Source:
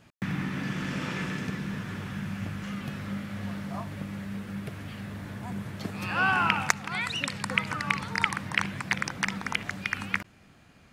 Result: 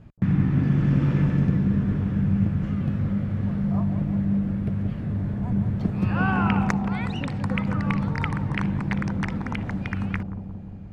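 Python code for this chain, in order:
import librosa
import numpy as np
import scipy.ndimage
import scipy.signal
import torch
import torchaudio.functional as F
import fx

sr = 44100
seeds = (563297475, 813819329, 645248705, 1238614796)

y = fx.tilt_eq(x, sr, slope=-4.5)
y = fx.echo_bbd(y, sr, ms=176, stages=1024, feedback_pct=71, wet_db=-5.5)
y = F.gain(torch.from_numpy(y), -1.0).numpy()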